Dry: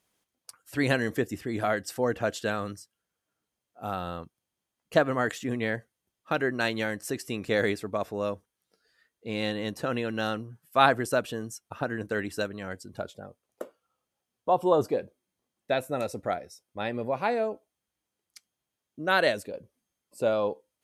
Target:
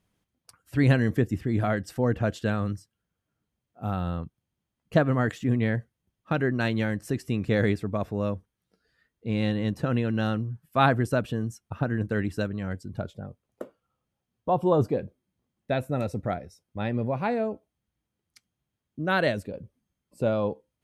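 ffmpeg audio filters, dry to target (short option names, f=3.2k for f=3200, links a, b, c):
-af "bass=f=250:g=14,treble=f=4k:g=-6,volume=-1.5dB"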